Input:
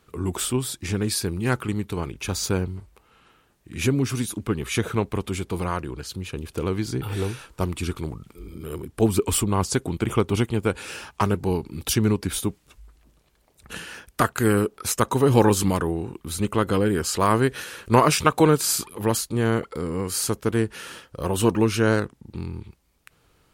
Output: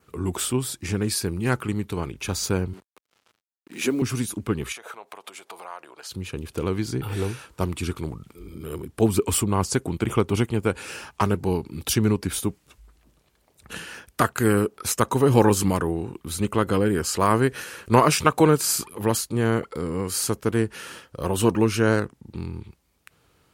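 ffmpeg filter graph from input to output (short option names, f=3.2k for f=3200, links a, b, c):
-filter_complex "[0:a]asettb=1/sr,asplit=3[a][b][c];[a]atrim=end=2.734[d];[b]atrim=start=2.73:end=4.02,asetpts=PTS-STARTPTS,afade=t=in:d=0.004:c=qsin,afade=t=out:st=1.286:d=0.004:c=qsin,highpass=f=220:w=0.5412,highpass=f=220:w=1.3066,acrusher=bits=7:mix=0:aa=0.5[e];[c]atrim=start=4.016[f];[d][e]acrossfade=d=0.004:c1=hsin:c2=qsin[g];[g][f]acrossfade=d=0.004:c1=qsin:c2=hsin,asettb=1/sr,asplit=3[h][i][j];[h]atrim=end=4.724[k];[i]atrim=start=4.72:end=6.11,asetpts=PTS-STARTPTS,afade=t=in:d=0.004:c=qsin,afade=t=out:st=1.386:d=0.004:c=qsin,acompressor=threshold=-32dB:ratio=20:attack=3.2:release=140:knee=1:detection=peak,highpass=f=720:t=q:w=1.9[l];[j]atrim=start=6.106[m];[k][l]acrossfade=d=0.004:c1=hsin:c2=qsin[n];[n][m]acrossfade=d=0.004:c1=qsin:c2=hsin,highpass=55,adynamicequalizer=threshold=0.00316:dfrequency=3600:dqfactor=3.8:tfrequency=3600:tqfactor=3.8:attack=5:release=100:ratio=0.375:range=3:mode=cutabove:tftype=bell"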